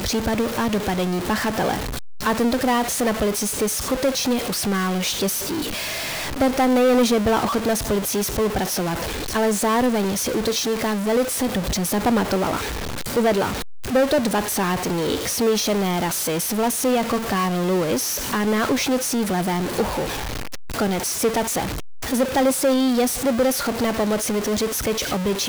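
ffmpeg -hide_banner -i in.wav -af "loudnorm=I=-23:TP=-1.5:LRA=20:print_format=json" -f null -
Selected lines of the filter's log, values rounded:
"input_i" : "-21.5",
"input_tp" : "-12.0",
"input_lra" : "1.7",
"input_thresh" : "-31.5",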